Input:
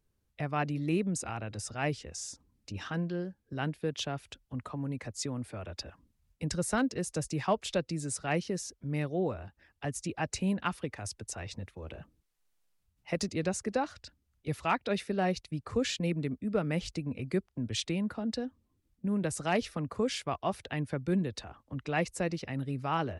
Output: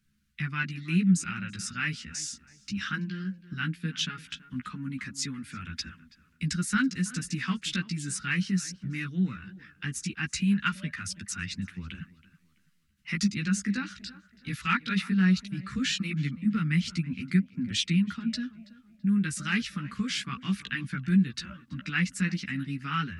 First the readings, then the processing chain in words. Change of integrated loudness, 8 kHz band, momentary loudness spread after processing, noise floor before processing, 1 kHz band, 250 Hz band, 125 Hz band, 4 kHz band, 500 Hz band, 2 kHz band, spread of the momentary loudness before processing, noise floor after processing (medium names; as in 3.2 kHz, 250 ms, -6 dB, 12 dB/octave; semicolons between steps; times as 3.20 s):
+4.0 dB, +3.5 dB, 12 LU, -77 dBFS, -3.0 dB, +5.5 dB, +5.0 dB, +6.0 dB, -17.0 dB, +7.5 dB, 11 LU, -65 dBFS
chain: in parallel at -1 dB: compression, threshold -40 dBFS, peak gain reduction 16 dB; on the sum: FFT filter 110 Hz 0 dB, 200 Hz +14 dB, 650 Hz -28 dB, 1.4 kHz +12 dB; tape echo 329 ms, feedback 39%, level -17 dB, low-pass 2.6 kHz; chorus voices 2, 0.17 Hz, delay 14 ms, depth 2.8 ms; treble shelf 6 kHz -9 dB; trim -3 dB